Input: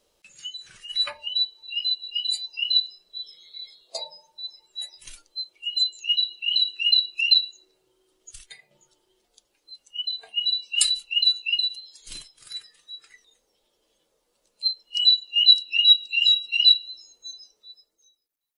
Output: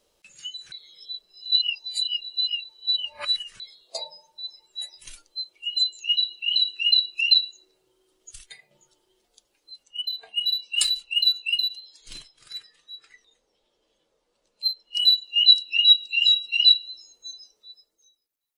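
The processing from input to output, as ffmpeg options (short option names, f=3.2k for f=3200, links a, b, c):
-filter_complex "[0:a]asplit=3[a][b][c];[a]afade=t=out:st=9.83:d=0.02[d];[b]adynamicsmooth=sensitivity=3.5:basefreq=7.1k,afade=t=in:st=9.83:d=0.02,afade=t=out:st=15.14:d=0.02[e];[c]afade=t=in:st=15.14:d=0.02[f];[d][e][f]amix=inputs=3:normalize=0,asplit=3[g][h][i];[g]atrim=end=0.722[j];[h]atrim=start=0.718:end=3.602,asetpts=PTS-STARTPTS,areverse[k];[i]atrim=start=3.598[l];[j][k]acrossfade=d=0.004:c1=hsin:c2=hsin[m];[m][l]acrossfade=d=0.004:c1=hsin:c2=hsin"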